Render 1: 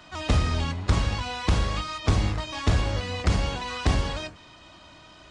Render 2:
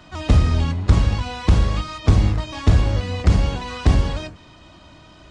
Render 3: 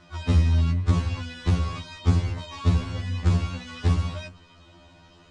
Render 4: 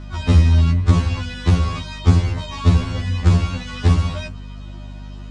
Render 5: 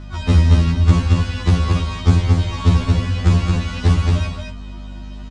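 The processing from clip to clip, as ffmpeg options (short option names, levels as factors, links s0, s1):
-af "lowshelf=f=450:g=8.5"
-af "afftfilt=real='re*2*eq(mod(b,4),0)':imag='im*2*eq(mod(b,4),0)':win_size=2048:overlap=0.75,volume=0.631"
-af "aeval=exprs='val(0)+0.0112*(sin(2*PI*50*n/s)+sin(2*PI*2*50*n/s)/2+sin(2*PI*3*50*n/s)/3+sin(2*PI*4*50*n/s)/4+sin(2*PI*5*50*n/s)/5)':c=same,volume=2.24"
-af "aecho=1:1:224:0.668"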